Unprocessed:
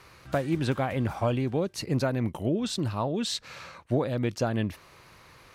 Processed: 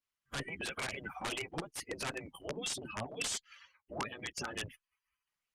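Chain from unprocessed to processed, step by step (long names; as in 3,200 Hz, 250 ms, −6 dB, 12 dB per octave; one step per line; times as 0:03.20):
spectral dynamics exaggerated over time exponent 3
in parallel at −1.5 dB: downward compressor 12 to 1, threshold −41 dBFS, peak gain reduction 16.5 dB
on the sum: transient designer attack −2 dB, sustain +6 dB
brickwall limiter −26.5 dBFS, peak gain reduction 6.5 dB
high-pass filter 170 Hz 6 dB per octave
high-shelf EQ 4,900 Hz −2 dB
gate on every frequency bin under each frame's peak −15 dB weak
wrap-around overflow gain 41.5 dB
low-pass filter 9,400 Hz 24 dB per octave
level +13.5 dB
Opus 32 kbit/s 48,000 Hz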